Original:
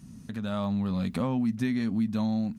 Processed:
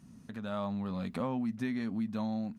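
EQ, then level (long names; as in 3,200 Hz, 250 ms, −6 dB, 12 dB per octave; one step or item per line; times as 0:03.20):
low-shelf EQ 280 Hz −11 dB
high-shelf EQ 2,300 Hz −9.5 dB
0.0 dB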